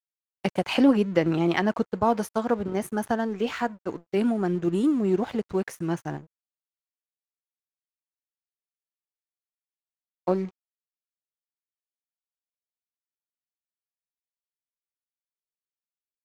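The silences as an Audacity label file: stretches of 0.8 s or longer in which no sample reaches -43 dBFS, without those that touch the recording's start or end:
6.240000	10.270000	silence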